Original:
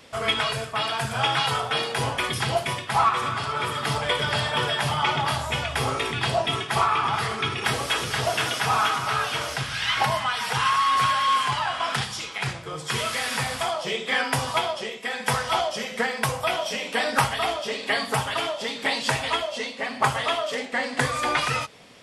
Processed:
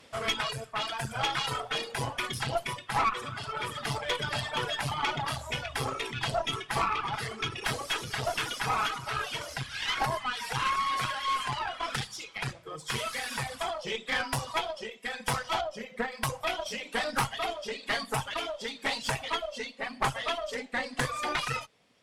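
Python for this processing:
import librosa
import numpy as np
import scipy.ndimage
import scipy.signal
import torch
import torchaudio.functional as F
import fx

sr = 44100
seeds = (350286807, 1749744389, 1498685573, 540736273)

y = np.minimum(x, 2.0 * 10.0 ** (-16.5 / 20.0) - x)
y = fx.dereverb_blind(y, sr, rt60_s=1.6)
y = fx.high_shelf(y, sr, hz=2600.0, db=-11.0, at=(15.61, 16.12))
y = fx.tube_stage(y, sr, drive_db=18.0, bias=0.7)
y = y * 10.0 ** (-1.5 / 20.0)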